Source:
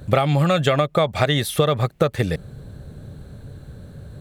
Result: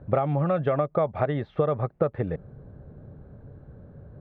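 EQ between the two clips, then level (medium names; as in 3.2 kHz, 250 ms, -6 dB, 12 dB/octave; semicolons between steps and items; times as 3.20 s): low-pass 1.1 kHz 12 dB/octave; distance through air 190 m; bass shelf 270 Hz -6 dB; -2.5 dB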